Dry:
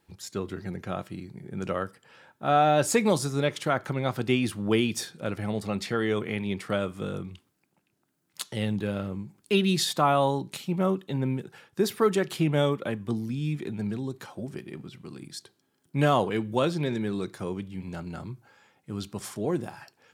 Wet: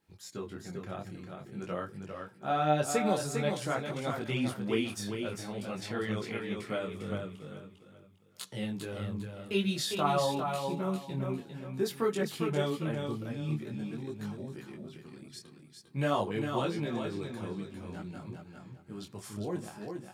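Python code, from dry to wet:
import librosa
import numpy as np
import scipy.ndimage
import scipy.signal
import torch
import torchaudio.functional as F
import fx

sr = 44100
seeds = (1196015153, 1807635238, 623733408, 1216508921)

y = fx.echo_feedback(x, sr, ms=401, feedback_pct=29, wet_db=-5.5)
y = fx.detune_double(y, sr, cents=17)
y = F.gain(torch.from_numpy(y), -3.5).numpy()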